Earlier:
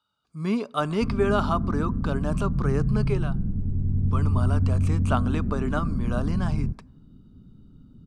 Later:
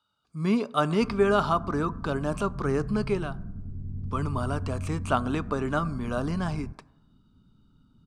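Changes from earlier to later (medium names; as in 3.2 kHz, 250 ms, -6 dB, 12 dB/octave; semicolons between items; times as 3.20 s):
speech: send +6.5 dB; background -11.0 dB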